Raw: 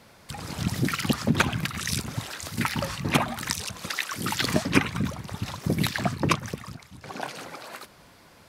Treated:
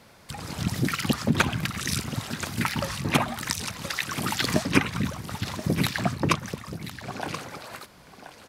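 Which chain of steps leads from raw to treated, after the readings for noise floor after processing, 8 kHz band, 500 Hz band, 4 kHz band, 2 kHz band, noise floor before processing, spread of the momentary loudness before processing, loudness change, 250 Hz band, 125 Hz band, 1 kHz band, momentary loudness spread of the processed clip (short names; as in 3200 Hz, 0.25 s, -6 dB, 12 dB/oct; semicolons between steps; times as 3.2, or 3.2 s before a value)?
-53 dBFS, +0.5 dB, +0.5 dB, +0.5 dB, +0.5 dB, -54 dBFS, 16 LU, 0.0 dB, +0.5 dB, +0.5 dB, +0.5 dB, 15 LU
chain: echo 1.029 s -12 dB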